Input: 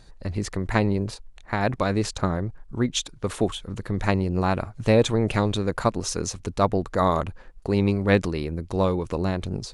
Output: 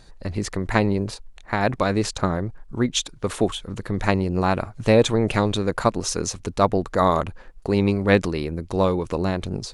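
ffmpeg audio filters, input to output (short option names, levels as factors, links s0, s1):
-af "equalizer=f=64:t=o:w=2.7:g=-3.5,volume=1.41"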